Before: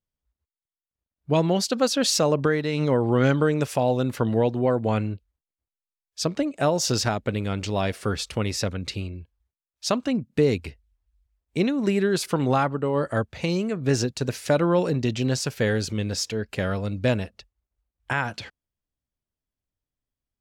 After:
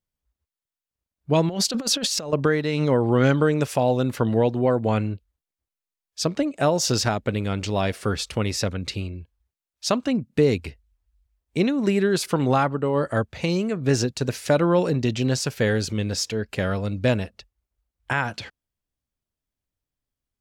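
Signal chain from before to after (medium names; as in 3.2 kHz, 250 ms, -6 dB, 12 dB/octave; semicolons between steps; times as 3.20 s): 1.49–2.33 s: compressor with a negative ratio -26 dBFS, ratio -0.5; trim +1.5 dB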